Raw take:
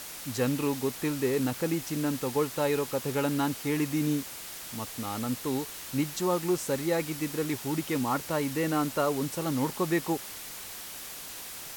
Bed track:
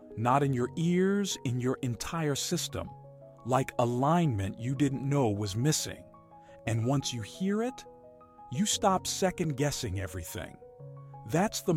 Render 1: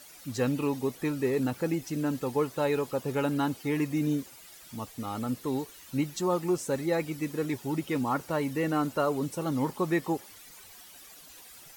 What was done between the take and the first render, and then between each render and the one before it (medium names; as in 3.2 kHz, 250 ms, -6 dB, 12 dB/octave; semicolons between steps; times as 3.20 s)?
noise reduction 13 dB, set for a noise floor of -42 dBFS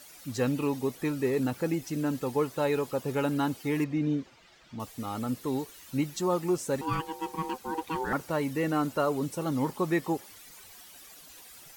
3.84–4.80 s: distance through air 170 m; 6.81–8.13 s: ring modulator 640 Hz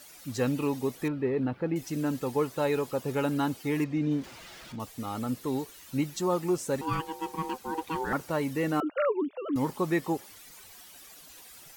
1.08–1.76 s: distance through air 390 m; 4.11–4.76 s: jump at every zero crossing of -44 dBFS; 8.80–9.56 s: formants replaced by sine waves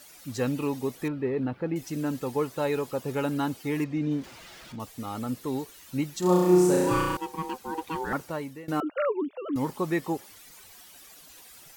6.19–7.17 s: flutter echo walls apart 5.7 m, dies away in 1.5 s; 8.17–8.68 s: fade out, to -22 dB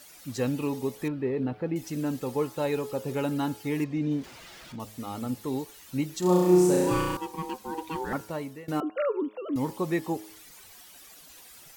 de-hum 106.6 Hz, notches 16; dynamic bell 1.4 kHz, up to -4 dB, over -46 dBFS, Q 1.6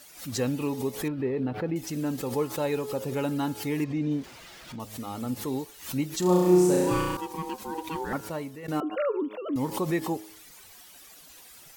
swell ahead of each attack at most 120 dB/s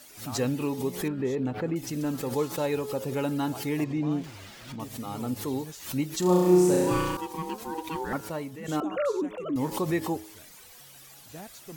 add bed track -16.5 dB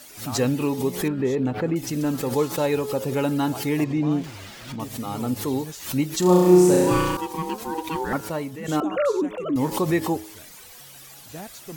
trim +5.5 dB